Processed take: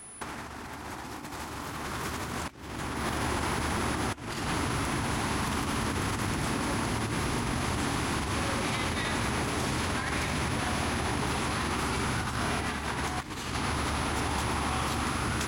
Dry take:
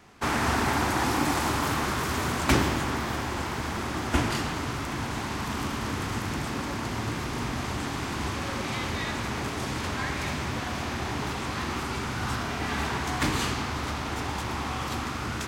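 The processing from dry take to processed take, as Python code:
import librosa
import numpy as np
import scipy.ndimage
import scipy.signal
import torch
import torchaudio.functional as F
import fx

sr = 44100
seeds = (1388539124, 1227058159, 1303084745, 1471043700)

y = x + 10.0 ** (-46.0 / 20.0) * np.sin(2.0 * np.pi * 10000.0 * np.arange(len(x)) / sr)
y = fx.over_compress(y, sr, threshold_db=-31.0, ratio=-0.5)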